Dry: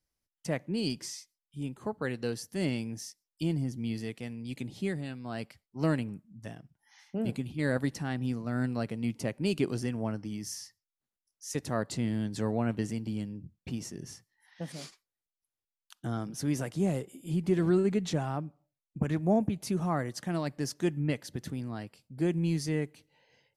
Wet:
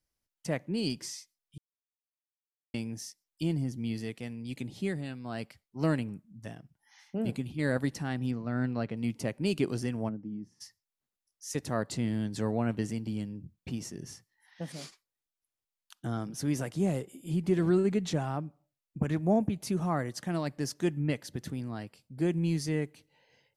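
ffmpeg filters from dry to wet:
-filter_complex "[0:a]asettb=1/sr,asplit=3[s0][s1][s2];[s0]atrim=end=8.314[s3];[s1]atrim=start=8.31:end=8.97,asetpts=PTS-STARTPTS,afade=t=in:d=0.004:c=qsin,afade=t=out:st=0.656:d=0.004:c=qsin,lowpass=3900[s4];[s2]atrim=start=8.966[s5];[s3][s4]acrossfade=d=0.004:c1=hsin:c2=qsin[s6];[s6][s5]acrossfade=d=0.004:c1=qsin:c2=hsin,asplit=3[s7][s8][s9];[s7]afade=t=out:st=10.08:d=0.02[s10];[s8]bandpass=f=230:t=q:w=1.3,afade=t=in:st=10.08:d=0.02,afade=t=out:st=10.6:d=0.02[s11];[s9]afade=t=in:st=10.6:d=0.02[s12];[s10][s11][s12]amix=inputs=3:normalize=0,asplit=3[s13][s14][s15];[s13]atrim=end=1.58,asetpts=PTS-STARTPTS,afade=t=out:st=1.576:d=0.004:c=hsin[s16];[s14]atrim=start=1.58:end=2.74,asetpts=PTS-STARTPTS,volume=0[s17];[s15]atrim=start=2.74,asetpts=PTS-STARTPTS,afade=t=in:d=0.004:c=hsin[s18];[s16][s17][s18]concat=n=3:v=0:a=1"

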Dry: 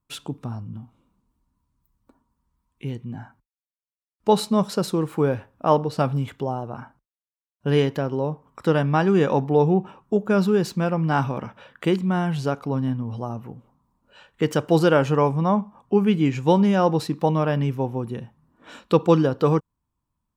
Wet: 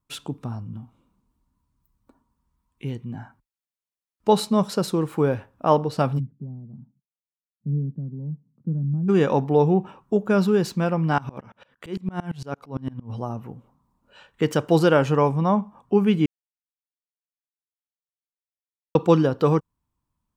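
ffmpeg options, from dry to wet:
-filter_complex "[0:a]asplit=3[s0][s1][s2];[s0]afade=t=out:st=6.18:d=0.02[s3];[s1]asuperpass=centerf=170:order=4:qfactor=1.8,afade=t=in:st=6.18:d=0.02,afade=t=out:st=9.08:d=0.02[s4];[s2]afade=t=in:st=9.08:d=0.02[s5];[s3][s4][s5]amix=inputs=3:normalize=0,asettb=1/sr,asplit=3[s6][s7][s8];[s6]atrim=end=11.184[s9];[s7]atrim=start=11.18:end=13.1,asetpts=PTS-STARTPTS,afade=t=in:d=0.004:c=qsin,afade=t=out:st=1.916:d=0.004:c=qsin,aeval=exprs='val(0)*pow(10,-26*if(lt(mod(-8.8*n/s,1),2*abs(-8.8)/1000),1-mod(-8.8*n/s,1)/(2*abs(-8.8)/1000),(mod(-8.8*n/s,1)-2*abs(-8.8)/1000)/(1-2*abs(-8.8)/1000))/20)':c=same[s10];[s8]atrim=start=13.096[s11];[s9][s10]acrossfade=d=0.004:c1=hsin:c2=qsin[s12];[s12][s11]acrossfade=d=0.004:c1=qsin:c2=hsin,asplit=3[s13][s14][s15];[s13]atrim=end=16.26,asetpts=PTS-STARTPTS,afade=t=out:st=16.256:d=0.004:c=hsin[s16];[s14]atrim=start=16.26:end=18.95,asetpts=PTS-STARTPTS,volume=0[s17];[s15]atrim=start=18.95,asetpts=PTS-STARTPTS,afade=t=in:d=0.004:c=hsin[s18];[s16][s17][s18]concat=n=3:v=0:a=1"

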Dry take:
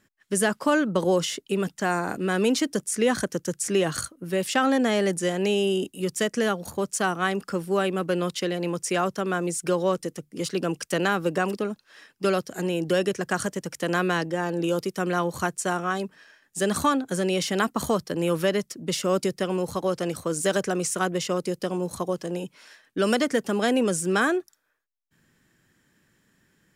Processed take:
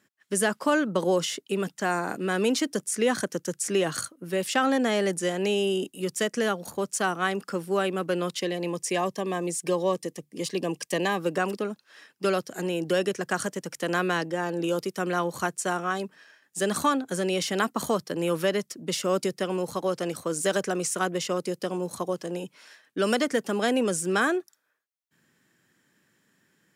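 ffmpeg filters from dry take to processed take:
-filter_complex "[0:a]asettb=1/sr,asplit=3[s0][s1][s2];[s0]atrim=end=8.414[s3];[s1]atrim=start=8.41:end=11.2,asetpts=PTS-STARTPTS,afade=t=in:d=0.004:c=qsin,afade=t=out:st=2.786:d=0.004:c=qsin,asuperstop=centerf=1400:order=8:qfactor=4[s4];[s2]atrim=start=11.196[s5];[s3][s4]acrossfade=d=0.004:c1=hsin:c2=qsin[s6];[s6][s5]acrossfade=d=0.004:c1=qsin:c2=hsin,highpass=120,lowshelf=f=180:g=-4,volume=0.891"

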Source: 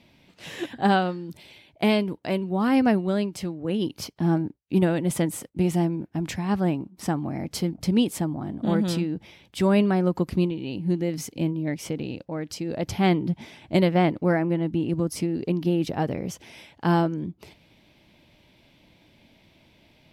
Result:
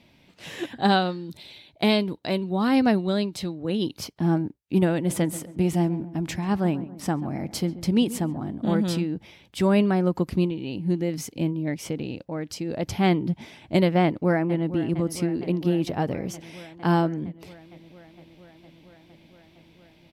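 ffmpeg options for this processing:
-filter_complex "[0:a]asettb=1/sr,asplit=3[s0][s1][s2];[s0]atrim=end=0.794[s3];[s1]atrim=start=0.79:end=3.97,asetpts=PTS-STARTPTS,afade=t=in:d=0.004:c=qsin,afade=t=out:st=3.176:d=0.004:c=qsin,equalizer=f=3900:t=o:w=0.28:g=12[s4];[s2]atrim=start=3.966[s5];[s3][s4]acrossfade=d=0.004:c1=hsin:c2=qsin[s6];[s6][s5]acrossfade=d=0.004:c1=qsin:c2=hsin,asplit=3[s7][s8][s9];[s7]afade=t=out:st=5.08:d=0.02[s10];[s8]asplit=2[s11][s12];[s12]adelay=136,lowpass=f=1500:p=1,volume=0.178,asplit=2[s13][s14];[s14]adelay=136,lowpass=f=1500:p=1,volume=0.51,asplit=2[s15][s16];[s16]adelay=136,lowpass=f=1500:p=1,volume=0.51,asplit=2[s17][s18];[s18]adelay=136,lowpass=f=1500:p=1,volume=0.51,asplit=2[s19][s20];[s20]adelay=136,lowpass=f=1500:p=1,volume=0.51[s21];[s11][s13][s15][s17][s19][s21]amix=inputs=6:normalize=0,afade=t=in:st=5.08:d=0.02,afade=t=out:st=8.49:d=0.02[s22];[s9]afade=t=in:st=8.49:d=0.02[s23];[s10][s22][s23]amix=inputs=3:normalize=0,asplit=2[s24][s25];[s25]afade=t=in:st=14.03:d=0.01,afade=t=out:st=14.72:d=0.01,aecho=0:1:460|920|1380|1840|2300|2760|3220|3680|4140|4600|5060|5520:0.199526|0.159621|0.127697|0.102157|0.0817259|0.0653808|0.0523046|0.0418437|0.0334749|0.02678|0.021424|0.0171392[s26];[s24][s26]amix=inputs=2:normalize=0"

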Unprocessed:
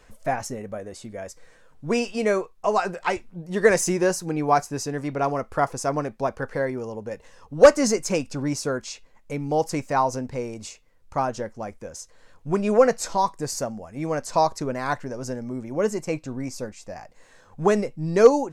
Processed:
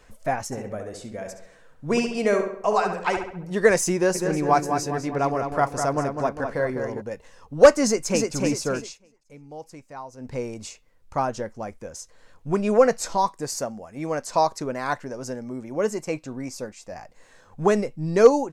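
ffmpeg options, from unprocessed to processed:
-filter_complex "[0:a]asplit=3[s0][s1][s2];[s0]afade=t=out:st=0.51:d=0.02[s3];[s1]asplit=2[s4][s5];[s5]adelay=68,lowpass=f=3800:p=1,volume=0.501,asplit=2[s6][s7];[s7]adelay=68,lowpass=f=3800:p=1,volume=0.5,asplit=2[s8][s9];[s9]adelay=68,lowpass=f=3800:p=1,volume=0.5,asplit=2[s10][s11];[s11]adelay=68,lowpass=f=3800:p=1,volume=0.5,asplit=2[s12][s13];[s13]adelay=68,lowpass=f=3800:p=1,volume=0.5,asplit=2[s14][s15];[s15]adelay=68,lowpass=f=3800:p=1,volume=0.5[s16];[s4][s6][s8][s10][s12][s14][s16]amix=inputs=7:normalize=0,afade=t=in:st=0.51:d=0.02,afade=t=out:st=3.52:d=0.02[s17];[s2]afade=t=in:st=3.52:d=0.02[s18];[s3][s17][s18]amix=inputs=3:normalize=0,asplit=3[s19][s20][s21];[s19]afade=t=out:st=4.14:d=0.02[s22];[s20]asplit=2[s23][s24];[s24]adelay=202,lowpass=f=4500:p=1,volume=0.473,asplit=2[s25][s26];[s26]adelay=202,lowpass=f=4500:p=1,volume=0.51,asplit=2[s27][s28];[s28]adelay=202,lowpass=f=4500:p=1,volume=0.51,asplit=2[s29][s30];[s30]adelay=202,lowpass=f=4500:p=1,volume=0.51,asplit=2[s31][s32];[s32]adelay=202,lowpass=f=4500:p=1,volume=0.51,asplit=2[s33][s34];[s34]adelay=202,lowpass=f=4500:p=1,volume=0.51[s35];[s23][s25][s27][s29][s31][s33][s35]amix=inputs=7:normalize=0,afade=t=in:st=4.14:d=0.02,afade=t=out:st=7:d=0.02[s36];[s21]afade=t=in:st=7:d=0.02[s37];[s22][s36][s37]amix=inputs=3:normalize=0,asplit=2[s38][s39];[s39]afade=t=in:st=7.84:d=0.01,afade=t=out:st=8.33:d=0.01,aecho=0:1:300|600|900|1200|1500:0.707946|0.283178|0.113271|0.0453085|0.0181234[s40];[s38][s40]amix=inputs=2:normalize=0,asettb=1/sr,asplit=3[s41][s42][s43];[s41]atrim=end=13.274[s44];[s42]atrim=start=13.27:end=16.92,asetpts=PTS-STARTPTS,afade=t=in:d=0.004:c=qsin,afade=t=out:st=3.646:d=0.004:c=qsin,lowshelf=f=130:g=-8.5[s45];[s43]atrim=start=16.916[s46];[s44][s45]acrossfade=d=0.004:c1=hsin:c2=qsin[s47];[s47][s46]acrossfade=d=0.004:c1=qsin:c2=hsin,asplit=3[s48][s49][s50];[s48]atrim=end=8.98,asetpts=PTS-STARTPTS,afade=t=out:st=8.83:d=0.15:silence=0.149624[s51];[s49]atrim=start=8.98:end=10.17,asetpts=PTS-STARTPTS,volume=0.15[s52];[s50]atrim=start=10.17,asetpts=PTS-STARTPTS,afade=t=in:d=0.15:silence=0.149624[s53];[s51][s52][s53]concat=n=3:v=0:a=1"

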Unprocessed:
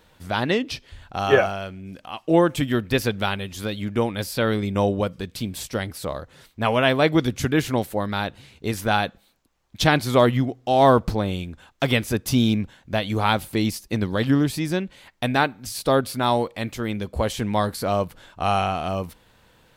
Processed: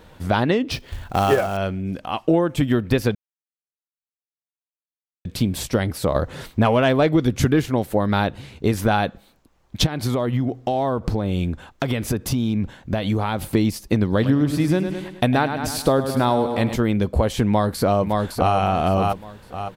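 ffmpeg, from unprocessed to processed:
-filter_complex "[0:a]asettb=1/sr,asplit=3[s0][s1][s2];[s0]atrim=end=0.714[s3];[s1]atrim=start=0.71:end=1.57,asetpts=PTS-STARTPTS,afade=t=in:d=0.004:c=qsin,afade=t=out:st=0.856:d=0.004:c=qsin,acrusher=bits=3:mode=log:mix=0:aa=0.000001[s4];[s2]atrim=start=1.566[s5];[s3][s4]acrossfade=d=0.004:c1=hsin:c2=qsin[s6];[s6][s5]acrossfade=d=0.004:c1=qsin:c2=hsin,asettb=1/sr,asplit=3[s7][s8][s9];[s7]atrim=end=6.154[s10];[s8]atrim=start=6.15:end=7.66,asetpts=PTS-STARTPTS,afade=t=in:d=0.004:c=qsin,afade=t=out:st=1.506:d=0.004:c=qsin,acontrast=72[s11];[s9]atrim=start=7.656[s12];[s10][s11]acrossfade=d=0.004:c1=hsin:c2=qsin[s13];[s13][s12]acrossfade=d=0.004:c1=qsin:c2=hsin,asplit=3[s14][s15][s16];[s14]afade=t=out:st=9.85:d=0.02[s17];[s15]acompressor=threshold=0.0447:ratio=10:attack=3.2:release=140:knee=1:detection=peak,afade=t=in:st=9.85:d=0.02,afade=t=out:st=13.49:d=0.02[s18];[s16]afade=t=in:st=13.49:d=0.02[s19];[s17][s18][s19]amix=inputs=3:normalize=0,asettb=1/sr,asplit=3[s20][s21][s22];[s20]atrim=end=14.114[s23];[s21]atrim=start=14.11:end=16.76,asetpts=PTS-STARTPTS,afade=t=in:d=0.004:c=qsin,afade=t=out:st=2.646:d=0.004:c=qsin,aecho=1:1:104|208|312|416|520:0.282|0.135|0.0649|0.0312|0.015,atrim=end_sample=116865[s24];[s22]atrim=start=16.756[s25];[s23][s24]acrossfade=d=0.004:c1=hsin:c2=qsin[s26];[s26][s25]acrossfade=d=0.004:c1=qsin:c2=hsin,asplit=2[s27][s28];[s28]afade=t=in:st=17.46:d=0.01,afade=t=out:st=18.56:d=0.01,aecho=0:1:560|1120|1680|2240:0.473151|0.141945|0.0425836|0.0127751[s29];[s27][s29]amix=inputs=2:normalize=0,asplit=3[s30][s31][s32];[s30]atrim=end=3.15,asetpts=PTS-STARTPTS,afade=t=out:st=3.146:d=0.004:c=hsin[s33];[s31]atrim=start=3.15:end=5.25,asetpts=PTS-STARTPTS,volume=0[s34];[s32]atrim=start=5.25,asetpts=PTS-STARTPTS,afade=t=in:d=0.004:c=hsin[s35];[s33][s34][s35]concat=n=3:v=0:a=1,tiltshelf=f=1400:g=4,acompressor=threshold=0.0794:ratio=6,volume=2.24"

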